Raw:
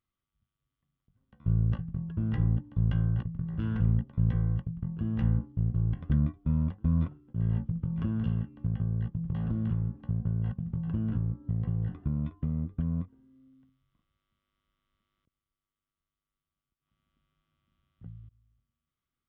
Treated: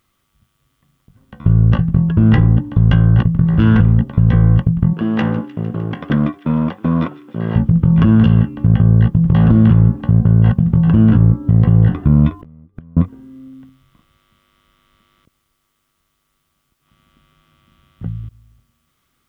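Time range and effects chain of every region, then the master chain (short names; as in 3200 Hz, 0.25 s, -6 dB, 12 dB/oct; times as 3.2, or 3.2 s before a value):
4.93–7.56 HPF 300 Hz + thin delay 0.152 s, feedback 77%, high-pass 2300 Hz, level -16 dB
12.39–12.97 flipped gate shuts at -30 dBFS, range -36 dB + negative-ratio compressor -49 dBFS, ratio -0.5
whole clip: low shelf 150 Hz -5.5 dB; maximiser +25 dB; gain -1 dB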